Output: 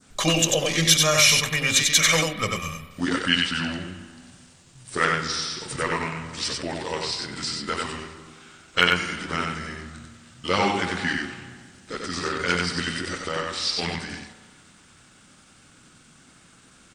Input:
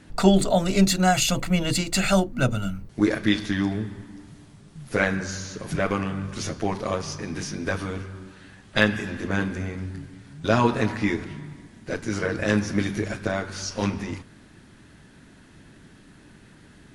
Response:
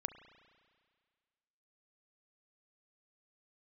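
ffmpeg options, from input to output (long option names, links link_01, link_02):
-filter_complex "[0:a]asetrate=37084,aresample=44100,atempo=1.18921,lowshelf=frequency=190:gain=-9,asplit=2[link_01][link_02];[1:a]atrim=start_sample=2205,adelay=93[link_03];[link_02][link_03]afir=irnorm=-1:irlink=0,volume=-1.5dB[link_04];[link_01][link_04]amix=inputs=2:normalize=0,adynamicequalizer=threshold=0.0112:dfrequency=2400:dqfactor=0.83:tfrequency=2400:tqfactor=0.83:attack=5:release=100:ratio=0.375:range=3.5:mode=boostabove:tftype=bell,crystalizer=i=3:c=0,volume=-3.5dB"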